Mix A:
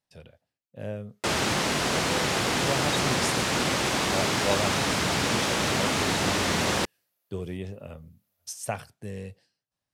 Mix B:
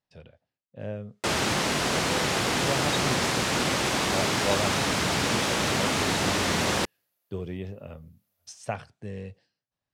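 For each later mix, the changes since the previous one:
speech: add high-frequency loss of the air 100 metres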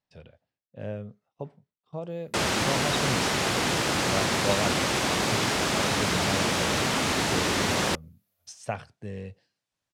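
first sound: entry +1.10 s

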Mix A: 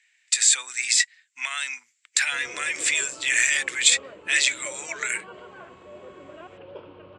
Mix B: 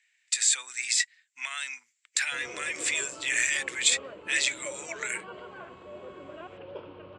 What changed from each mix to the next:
speech −5.5 dB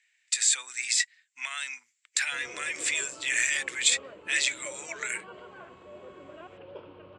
background −3.0 dB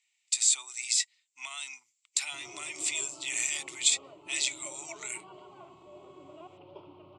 master: add phaser with its sweep stopped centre 330 Hz, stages 8

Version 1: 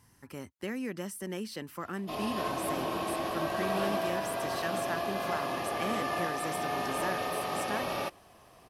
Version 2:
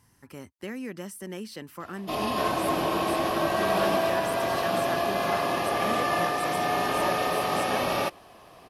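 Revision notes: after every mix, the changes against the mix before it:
background +7.0 dB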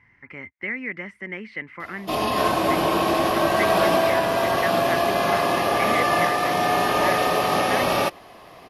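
speech: add low-pass with resonance 2,100 Hz, resonance Q 15
background +5.5 dB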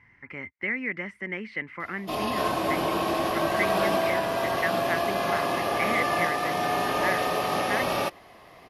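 background −5.5 dB

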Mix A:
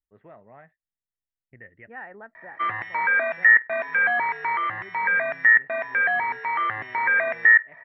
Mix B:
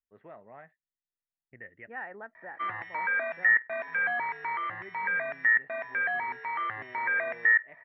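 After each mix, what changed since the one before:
speech: add low-shelf EQ 140 Hz −10 dB
background −7.5 dB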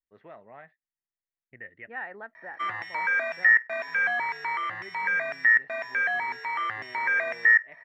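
master: remove high-frequency loss of the air 400 metres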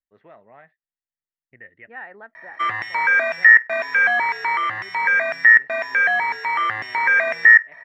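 background +8.5 dB

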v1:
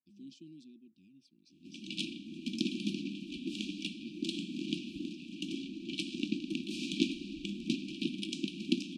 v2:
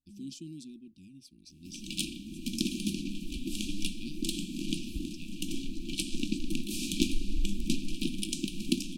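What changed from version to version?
speech +6.5 dB
master: remove band-pass filter 200–3,900 Hz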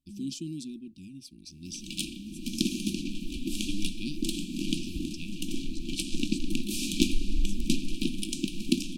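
speech +7.0 dB
second sound +3.5 dB

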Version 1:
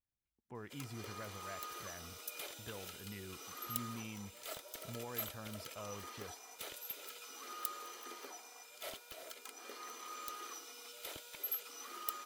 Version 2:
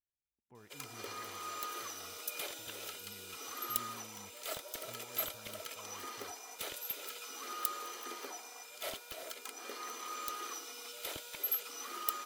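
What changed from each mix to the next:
speech −9.5 dB
background +5.0 dB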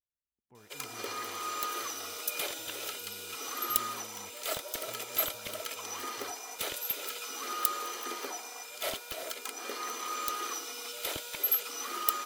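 background +6.5 dB

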